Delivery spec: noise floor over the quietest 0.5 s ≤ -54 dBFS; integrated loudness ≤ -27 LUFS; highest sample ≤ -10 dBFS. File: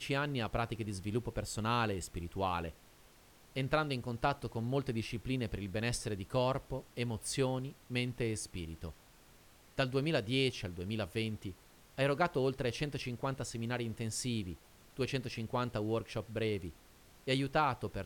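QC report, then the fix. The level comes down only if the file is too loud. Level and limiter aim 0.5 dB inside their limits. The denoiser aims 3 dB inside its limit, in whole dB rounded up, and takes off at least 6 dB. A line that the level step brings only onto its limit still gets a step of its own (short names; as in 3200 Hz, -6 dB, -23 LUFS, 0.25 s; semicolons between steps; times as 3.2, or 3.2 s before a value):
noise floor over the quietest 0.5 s -61 dBFS: OK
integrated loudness -36.5 LUFS: OK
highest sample -15.5 dBFS: OK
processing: none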